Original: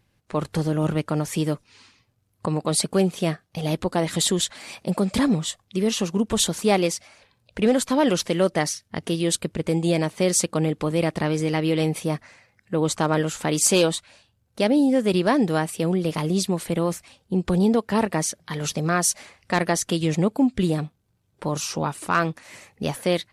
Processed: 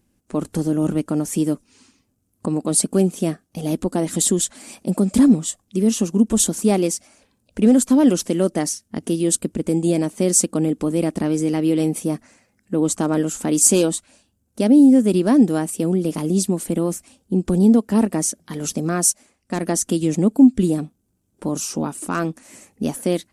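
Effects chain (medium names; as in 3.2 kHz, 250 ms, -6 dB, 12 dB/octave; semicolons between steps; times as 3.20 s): ten-band graphic EQ 125 Hz -11 dB, 250 Hz +9 dB, 500 Hz -4 dB, 1 kHz -6 dB, 2 kHz -8 dB, 4 kHz -9 dB, 8 kHz +5 dB; 19.04–19.63 s: upward expansion 1.5:1, over -37 dBFS; trim +3.5 dB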